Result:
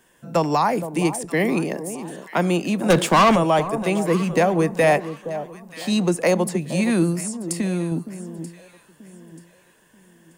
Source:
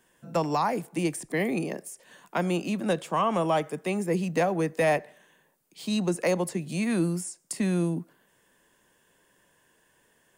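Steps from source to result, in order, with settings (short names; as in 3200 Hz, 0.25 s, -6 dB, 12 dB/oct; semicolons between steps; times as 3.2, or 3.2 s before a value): 2.9–3.36 sample leveller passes 3; 7.11–7.92 compressor, threshold -27 dBFS, peak gain reduction 6 dB; echo with dull and thin repeats by turns 0.467 s, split 1000 Hz, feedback 56%, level -11 dB; gain +6.5 dB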